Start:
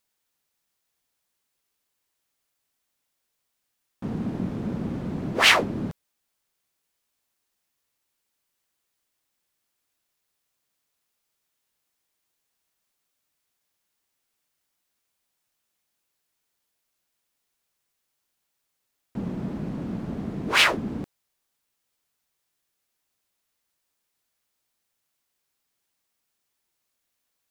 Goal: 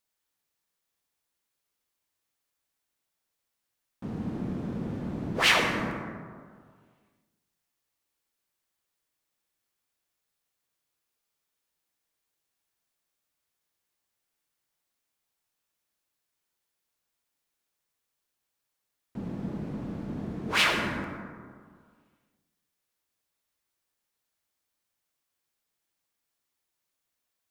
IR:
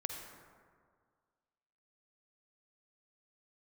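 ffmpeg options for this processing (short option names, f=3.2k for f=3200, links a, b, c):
-filter_complex "[1:a]atrim=start_sample=2205[a];[0:a][a]afir=irnorm=-1:irlink=0,volume=-4dB"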